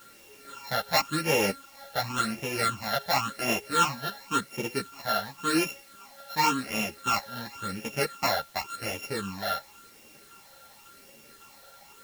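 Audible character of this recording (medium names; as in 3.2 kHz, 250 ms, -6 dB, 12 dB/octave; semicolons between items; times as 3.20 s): a buzz of ramps at a fixed pitch in blocks of 32 samples; phasing stages 8, 0.92 Hz, lowest notch 320–1300 Hz; a quantiser's noise floor 10-bit, dither triangular; a shimmering, thickened sound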